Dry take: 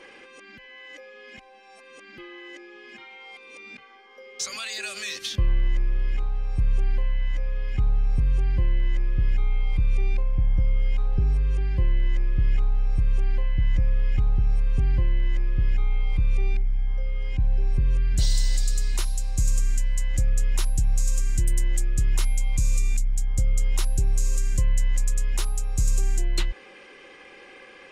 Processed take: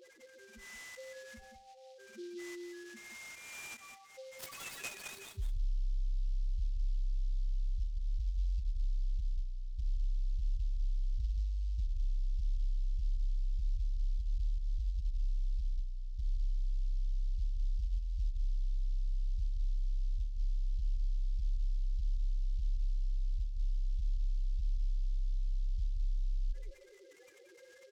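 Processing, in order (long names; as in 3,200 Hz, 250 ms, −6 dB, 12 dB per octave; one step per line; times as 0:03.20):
low-shelf EQ 140 Hz +9 dB
brickwall limiter −11 dBFS, peak gain reduction 5.5 dB
reversed playback
downward compressor 10 to 1, threshold −29 dBFS, peak gain reduction 16 dB
reversed playback
soft clipping −25 dBFS, distortion −25 dB
spectral peaks only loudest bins 2
single-tap delay 177 ms −7.5 dB
on a send at −13 dB: convolution reverb RT60 0.50 s, pre-delay 15 ms
on the sum: short delay modulated by noise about 4,100 Hz, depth 0.054 ms
level −1.5 dB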